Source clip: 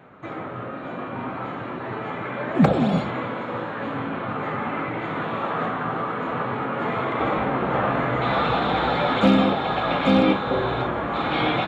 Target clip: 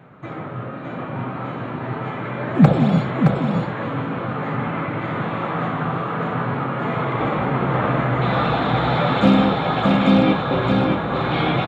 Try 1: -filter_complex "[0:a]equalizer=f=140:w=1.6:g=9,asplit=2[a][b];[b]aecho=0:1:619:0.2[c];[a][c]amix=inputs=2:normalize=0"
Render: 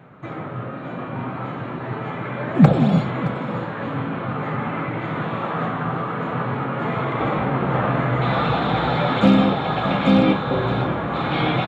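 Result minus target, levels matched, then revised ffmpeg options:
echo-to-direct -9.5 dB
-filter_complex "[0:a]equalizer=f=140:w=1.6:g=9,asplit=2[a][b];[b]aecho=0:1:619:0.596[c];[a][c]amix=inputs=2:normalize=0"

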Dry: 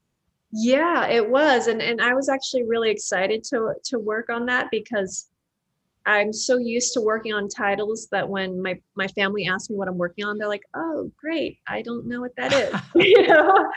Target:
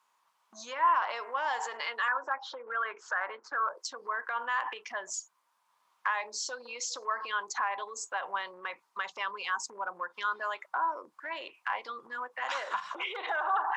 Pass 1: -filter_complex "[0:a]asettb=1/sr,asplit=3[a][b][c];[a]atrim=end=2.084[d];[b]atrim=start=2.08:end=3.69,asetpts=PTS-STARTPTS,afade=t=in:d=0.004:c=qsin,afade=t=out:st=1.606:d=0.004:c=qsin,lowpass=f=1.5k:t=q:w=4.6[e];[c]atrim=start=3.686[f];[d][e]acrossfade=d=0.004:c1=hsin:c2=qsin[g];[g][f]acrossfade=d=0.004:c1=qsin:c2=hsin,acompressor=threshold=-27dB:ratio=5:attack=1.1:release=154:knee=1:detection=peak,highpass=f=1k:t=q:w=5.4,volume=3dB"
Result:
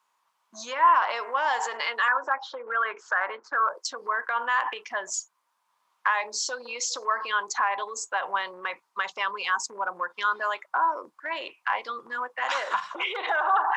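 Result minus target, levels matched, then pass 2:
compressor: peak gain reduction -6.5 dB
-filter_complex "[0:a]asettb=1/sr,asplit=3[a][b][c];[a]atrim=end=2.084[d];[b]atrim=start=2.08:end=3.69,asetpts=PTS-STARTPTS,afade=t=in:d=0.004:c=qsin,afade=t=out:st=1.606:d=0.004:c=qsin,lowpass=f=1.5k:t=q:w=4.6[e];[c]atrim=start=3.686[f];[d][e]acrossfade=d=0.004:c1=hsin:c2=qsin[g];[g][f]acrossfade=d=0.004:c1=qsin:c2=hsin,acompressor=threshold=-35dB:ratio=5:attack=1.1:release=154:knee=1:detection=peak,highpass=f=1k:t=q:w=5.4,volume=3dB"

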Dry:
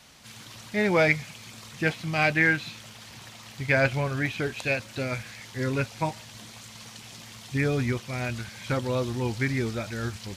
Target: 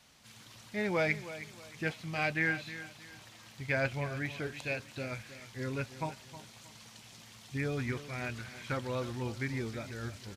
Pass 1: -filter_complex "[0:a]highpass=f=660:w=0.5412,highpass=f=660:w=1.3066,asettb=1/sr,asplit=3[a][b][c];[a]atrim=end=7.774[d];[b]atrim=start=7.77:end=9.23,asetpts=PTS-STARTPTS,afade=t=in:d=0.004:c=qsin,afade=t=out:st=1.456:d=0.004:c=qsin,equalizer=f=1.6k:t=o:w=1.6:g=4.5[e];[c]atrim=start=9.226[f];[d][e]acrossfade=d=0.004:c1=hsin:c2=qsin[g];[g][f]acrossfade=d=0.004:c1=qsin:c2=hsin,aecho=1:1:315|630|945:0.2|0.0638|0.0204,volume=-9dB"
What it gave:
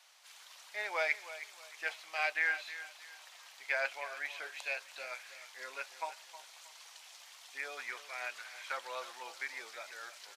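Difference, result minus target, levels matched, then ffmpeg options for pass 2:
500 Hz band -4.5 dB
-filter_complex "[0:a]asettb=1/sr,asplit=3[a][b][c];[a]atrim=end=7.774[d];[b]atrim=start=7.77:end=9.23,asetpts=PTS-STARTPTS,afade=t=in:d=0.004:c=qsin,afade=t=out:st=1.456:d=0.004:c=qsin,equalizer=f=1.6k:t=o:w=1.6:g=4.5[e];[c]atrim=start=9.226[f];[d][e]acrossfade=d=0.004:c1=hsin:c2=qsin[g];[g][f]acrossfade=d=0.004:c1=qsin:c2=hsin,aecho=1:1:315|630|945:0.2|0.0638|0.0204,volume=-9dB"

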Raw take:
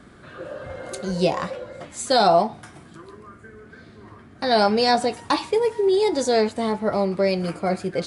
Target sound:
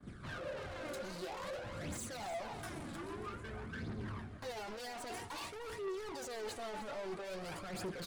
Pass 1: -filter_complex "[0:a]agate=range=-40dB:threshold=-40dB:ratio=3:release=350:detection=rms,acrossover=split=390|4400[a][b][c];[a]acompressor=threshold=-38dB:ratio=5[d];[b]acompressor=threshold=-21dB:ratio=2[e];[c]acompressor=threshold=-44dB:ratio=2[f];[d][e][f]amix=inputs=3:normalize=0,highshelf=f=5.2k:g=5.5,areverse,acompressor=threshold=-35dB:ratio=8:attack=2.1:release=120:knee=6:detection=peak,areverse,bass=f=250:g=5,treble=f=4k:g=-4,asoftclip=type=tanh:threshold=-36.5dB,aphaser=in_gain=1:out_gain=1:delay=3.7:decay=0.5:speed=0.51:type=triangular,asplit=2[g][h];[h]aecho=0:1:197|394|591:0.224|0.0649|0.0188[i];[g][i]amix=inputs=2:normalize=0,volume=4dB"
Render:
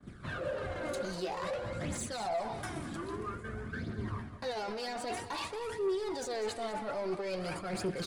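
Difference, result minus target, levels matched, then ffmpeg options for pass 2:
echo 0.106 s early; soft clip: distortion -8 dB
-filter_complex "[0:a]agate=range=-40dB:threshold=-40dB:ratio=3:release=350:detection=rms,acrossover=split=390|4400[a][b][c];[a]acompressor=threshold=-38dB:ratio=5[d];[b]acompressor=threshold=-21dB:ratio=2[e];[c]acompressor=threshold=-44dB:ratio=2[f];[d][e][f]amix=inputs=3:normalize=0,highshelf=f=5.2k:g=5.5,areverse,acompressor=threshold=-35dB:ratio=8:attack=2.1:release=120:knee=6:detection=peak,areverse,bass=f=250:g=5,treble=f=4k:g=-4,asoftclip=type=tanh:threshold=-47dB,aphaser=in_gain=1:out_gain=1:delay=3.7:decay=0.5:speed=0.51:type=triangular,asplit=2[g][h];[h]aecho=0:1:303|606|909:0.224|0.0649|0.0188[i];[g][i]amix=inputs=2:normalize=0,volume=4dB"

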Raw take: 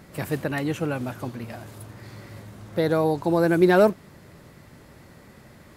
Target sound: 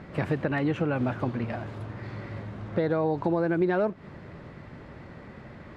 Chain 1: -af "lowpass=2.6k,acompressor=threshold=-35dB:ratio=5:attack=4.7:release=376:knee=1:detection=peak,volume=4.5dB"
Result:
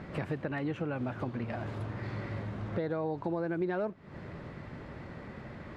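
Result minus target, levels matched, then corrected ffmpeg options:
compressor: peak gain reduction +7.5 dB
-af "lowpass=2.6k,acompressor=threshold=-25.5dB:ratio=5:attack=4.7:release=376:knee=1:detection=peak,volume=4.5dB"

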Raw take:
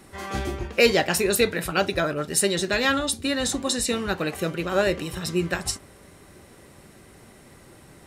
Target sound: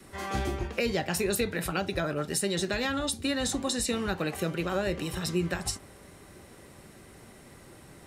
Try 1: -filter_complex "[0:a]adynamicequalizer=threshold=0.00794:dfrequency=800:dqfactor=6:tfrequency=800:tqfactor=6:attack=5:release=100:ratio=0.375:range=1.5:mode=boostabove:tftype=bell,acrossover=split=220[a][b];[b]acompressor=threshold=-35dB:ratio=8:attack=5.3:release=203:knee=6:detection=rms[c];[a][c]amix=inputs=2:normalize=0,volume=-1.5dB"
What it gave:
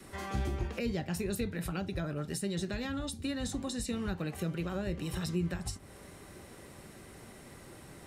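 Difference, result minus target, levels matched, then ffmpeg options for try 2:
compressor: peak gain reduction +10.5 dB
-filter_complex "[0:a]adynamicequalizer=threshold=0.00794:dfrequency=800:dqfactor=6:tfrequency=800:tqfactor=6:attack=5:release=100:ratio=0.375:range=1.5:mode=boostabove:tftype=bell,acrossover=split=220[a][b];[b]acompressor=threshold=-23dB:ratio=8:attack=5.3:release=203:knee=6:detection=rms[c];[a][c]amix=inputs=2:normalize=0,volume=-1.5dB"

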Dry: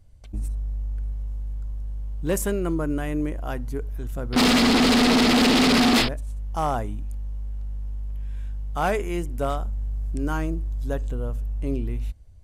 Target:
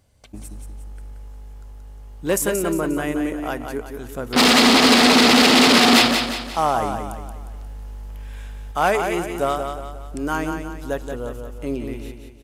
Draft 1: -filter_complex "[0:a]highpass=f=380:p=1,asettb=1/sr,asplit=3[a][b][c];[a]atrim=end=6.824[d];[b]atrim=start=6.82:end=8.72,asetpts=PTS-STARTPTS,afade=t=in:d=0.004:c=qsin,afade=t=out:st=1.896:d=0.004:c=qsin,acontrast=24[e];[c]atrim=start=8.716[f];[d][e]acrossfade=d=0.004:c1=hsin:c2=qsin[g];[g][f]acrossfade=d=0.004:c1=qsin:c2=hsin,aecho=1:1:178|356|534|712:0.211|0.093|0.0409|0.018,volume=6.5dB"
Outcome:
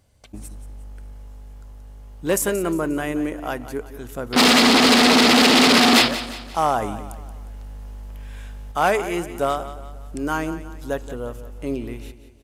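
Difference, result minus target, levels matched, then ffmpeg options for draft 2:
echo-to-direct -7 dB
-filter_complex "[0:a]highpass=f=380:p=1,asettb=1/sr,asplit=3[a][b][c];[a]atrim=end=6.824[d];[b]atrim=start=6.82:end=8.72,asetpts=PTS-STARTPTS,afade=t=in:d=0.004:c=qsin,afade=t=out:st=1.896:d=0.004:c=qsin,acontrast=24[e];[c]atrim=start=8.716[f];[d][e]acrossfade=d=0.004:c1=hsin:c2=qsin[g];[g][f]acrossfade=d=0.004:c1=qsin:c2=hsin,aecho=1:1:178|356|534|712|890:0.473|0.208|0.0916|0.0403|0.0177,volume=6.5dB"

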